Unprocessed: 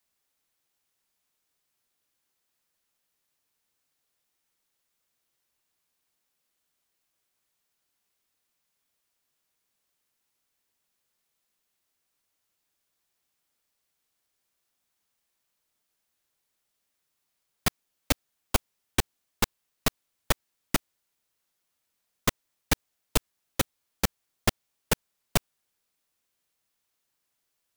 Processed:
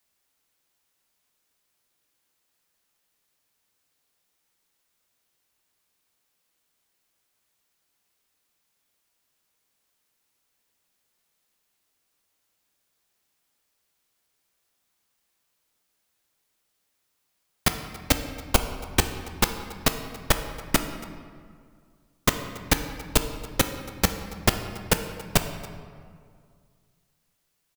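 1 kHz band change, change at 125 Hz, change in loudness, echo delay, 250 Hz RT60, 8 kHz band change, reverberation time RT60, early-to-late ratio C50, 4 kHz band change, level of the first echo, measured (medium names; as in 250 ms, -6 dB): +5.0 dB, +5.0 dB, +4.0 dB, 280 ms, 2.3 s, +4.5 dB, 2.1 s, 8.5 dB, +4.5 dB, -20.5 dB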